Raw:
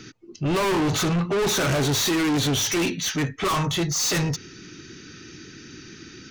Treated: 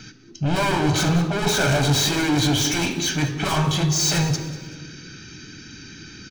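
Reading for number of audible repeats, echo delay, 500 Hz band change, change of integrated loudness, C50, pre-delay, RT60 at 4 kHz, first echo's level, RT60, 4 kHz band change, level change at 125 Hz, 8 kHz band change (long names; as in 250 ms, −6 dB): 3, 191 ms, −0.5 dB, +2.5 dB, 10.0 dB, 3 ms, 1.1 s, −16.5 dB, 1.5 s, +2.5 dB, +5.0 dB, +1.5 dB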